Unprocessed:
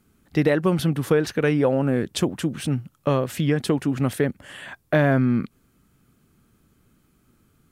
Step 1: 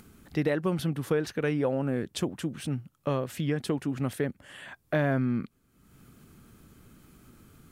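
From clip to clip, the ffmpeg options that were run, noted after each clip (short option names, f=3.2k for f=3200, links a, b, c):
-af "acompressor=mode=upward:threshold=-33dB:ratio=2.5,volume=-7.5dB"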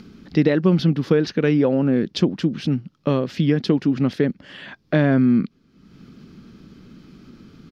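-af "firequalizer=gain_entry='entry(110,0);entry(180,10);entry(700,0);entry(5000,8);entry(8200,-18)':delay=0.05:min_phase=1,volume=4dB"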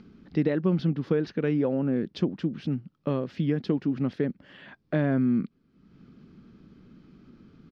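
-af "aemphasis=mode=reproduction:type=75kf,volume=-7.5dB"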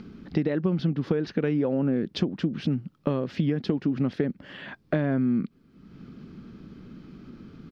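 -af "acompressor=threshold=-29dB:ratio=6,volume=7.5dB"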